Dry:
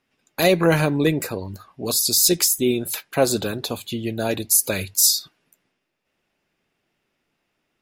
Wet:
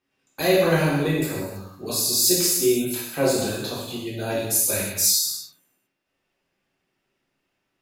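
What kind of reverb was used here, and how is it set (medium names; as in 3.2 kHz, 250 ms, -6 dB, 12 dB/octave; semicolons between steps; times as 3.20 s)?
gated-style reverb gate 350 ms falling, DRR -7 dB; trim -9.5 dB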